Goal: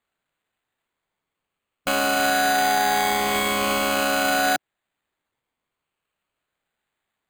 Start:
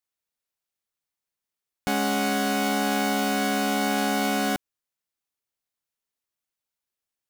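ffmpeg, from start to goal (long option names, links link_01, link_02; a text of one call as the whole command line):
ffmpeg -i in.wav -filter_complex "[0:a]afftfilt=real='re*pow(10,12/40*sin(2*PI*(0.86*log(max(b,1)*sr/1024/100)/log(2)-(0.47)*(pts-256)/sr)))':imag='im*pow(10,12/40*sin(2*PI*(0.86*log(max(b,1)*sr/1024/100)/log(2)-(0.47)*(pts-256)/sr)))':win_size=1024:overlap=0.75,acrossover=split=470 2900:gain=0.224 1 0.158[link_01][link_02][link_03];[link_01][link_02][link_03]amix=inputs=3:normalize=0,asplit=2[link_04][link_05];[link_05]alimiter=limit=-22dB:level=0:latency=1:release=420,volume=1.5dB[link_06];[link_04][link_06]amix=inputs=2:normalize=0,crystalizer=i=2:c=0,acrusher=samples=8:mix=1:aa=0.000001" out.wav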